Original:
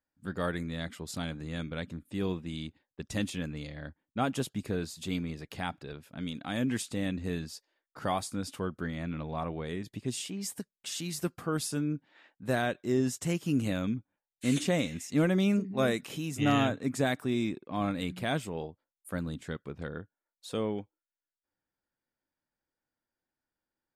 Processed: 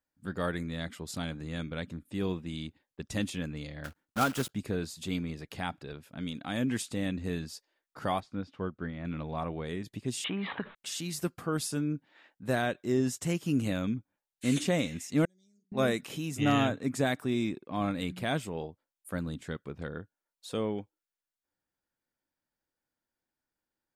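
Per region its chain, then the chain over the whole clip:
3.84–4.53 s: block-companded coder 3-bit + peaking EQ 1.4 kHz +8.5 dB 0.27 oct
8.20–9.05 s: distance through air 240 m + upward expansion, over -44 dBFS
10.24–10.75 s: steep low-pass 3.8 kHz 96 dB/octave + peaking EQ 1.2 kHz +15 dB 1.9 oct + level flattener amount 70%
15.25–15.72 s: inverse Chebyshev high-pass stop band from 2.9 kHz + tape spacing loss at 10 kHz 34 dB
whole clip: none

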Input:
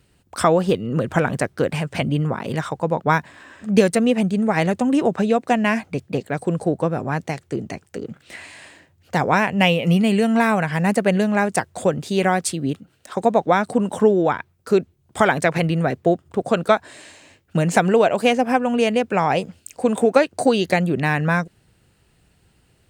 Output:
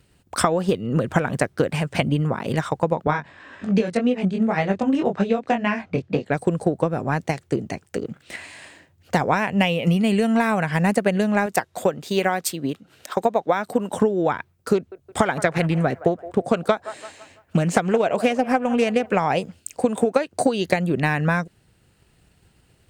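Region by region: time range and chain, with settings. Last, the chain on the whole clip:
3.07–6.30 s: low-pass 4.6 kHz + chorus 1.9 Hz, delay 20 ms, depth 2.6 ms + three bands compressed up and down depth 40%
11.46–13.93 s: bass shelf 210 Hz -10.5 dB + upward compressor, threshold -38 dBFS + decimation joined by straight lines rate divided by 2×
14.75–19.18 s: feedback echo behind a band-pass 167 ms, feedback 41%, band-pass 870 Hz, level -15 dB + loudspeaker Doppler distortion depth 0.13 ms
whole clip: transient shaper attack +5 dB, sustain -1 dB; compression 6:1, threshold -15 dBFS

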